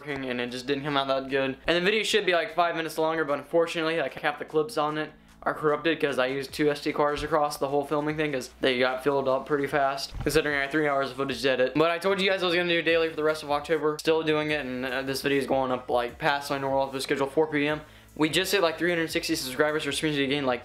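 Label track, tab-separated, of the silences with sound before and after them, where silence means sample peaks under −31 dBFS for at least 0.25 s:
5.060000	5.420000	silence
17.780000	18.170000	silence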